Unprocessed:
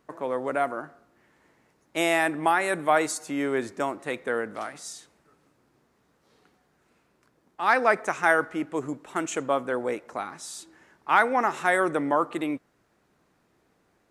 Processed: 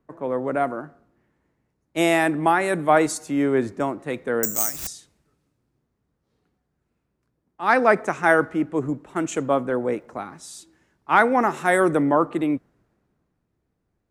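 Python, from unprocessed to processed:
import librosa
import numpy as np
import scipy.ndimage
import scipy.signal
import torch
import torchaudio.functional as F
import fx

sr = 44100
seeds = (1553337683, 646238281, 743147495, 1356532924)

y = fx.resample_bad(x, sr, factor=6, down='none', up='zero_stuff', at=(4.43, 4.87))
y = fx.low_shelf(y, sr, hz=390.0, db=11.5)
y = fx.dmg_crackle(y, sr, seeds[0], per_s=390.0, level_db=-59.0, at=(9.9, 10.4), fade=0.02)
y = fx.high_shelf(y, sr, hz=10000.0, db=10.5, at=(11.32, 12.03))
y = fx.band_widen(y, sr, depth_pct=40)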